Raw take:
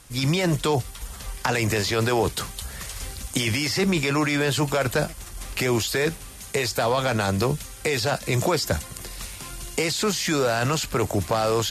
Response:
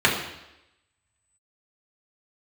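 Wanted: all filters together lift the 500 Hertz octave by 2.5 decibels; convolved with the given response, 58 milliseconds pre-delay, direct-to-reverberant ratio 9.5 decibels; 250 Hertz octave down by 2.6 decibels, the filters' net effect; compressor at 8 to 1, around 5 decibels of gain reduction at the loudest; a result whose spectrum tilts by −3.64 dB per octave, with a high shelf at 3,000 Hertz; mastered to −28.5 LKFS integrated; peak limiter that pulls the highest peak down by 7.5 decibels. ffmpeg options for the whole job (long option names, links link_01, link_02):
-filter_complex "[0:a]equalizer=frequency=250:width_type=o:gain=-6,equalizer=frequency=500:width_type=o:gain=4.5,highshelf=frequency=3000:gain=6,acompressor=threshold=-21dB:ratio=8,alimiter=limit=-17.5dB:level=0:latency=1,asplit=2[link_01][link_02];[1:a]atrim=start_sample=2205,adelay=58[link_03];[link_02][link_03]afir=irnorm=-1:irlink=0,volume=-29dB[link_04];[link_01][link_04]amix=inputs=2:normalize=0,volume=-1.5dB"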